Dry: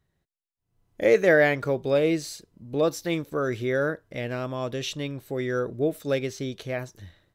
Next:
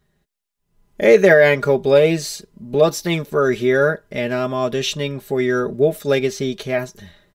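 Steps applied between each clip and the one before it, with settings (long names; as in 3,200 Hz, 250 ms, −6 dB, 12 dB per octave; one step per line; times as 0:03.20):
comb filter 4.9 ms, depth 71%
boost into a limiter +8.5 dB
level −1 dB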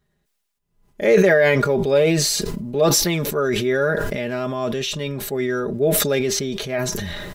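level that may fall only so fast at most 23 dB per second
level −4.5 dB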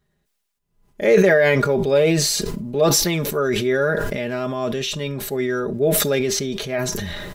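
convolution reverb, pre-delay 8 ms, DRR 22 dB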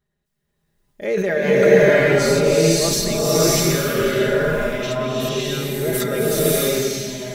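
fade-out on the ending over 1.30 s
slow-attack reverb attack 620 ms, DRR −8 dB
level −7 dB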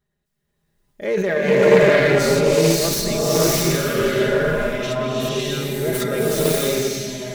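phase distortion by the signal itself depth 0.14 ms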